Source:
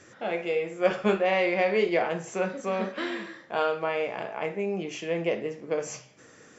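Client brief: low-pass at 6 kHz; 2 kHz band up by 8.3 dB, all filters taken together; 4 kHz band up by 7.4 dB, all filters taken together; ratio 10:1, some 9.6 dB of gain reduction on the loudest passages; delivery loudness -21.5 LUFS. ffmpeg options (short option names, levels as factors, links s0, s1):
-af "lowpass=6000,equalizer=f=2000:t=o:g=8,equalizer=f=4000:t=o:g=7,acompressor=threshold=0.0501:ratio=10,volume=3.16"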